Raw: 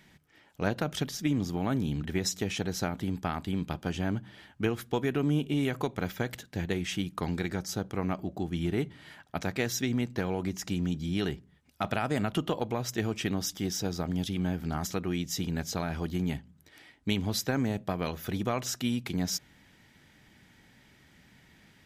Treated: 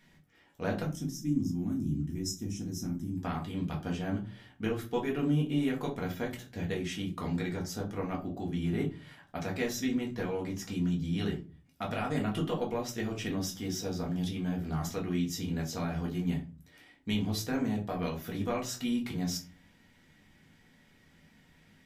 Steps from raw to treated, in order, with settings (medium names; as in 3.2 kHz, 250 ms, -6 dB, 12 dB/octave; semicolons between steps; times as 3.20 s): time-frequency box 0.83–3.17 s, 380–5000 Hz -17 dB; simulated room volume 150 m³, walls furnished, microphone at 1.8 m; trim -7.5 dB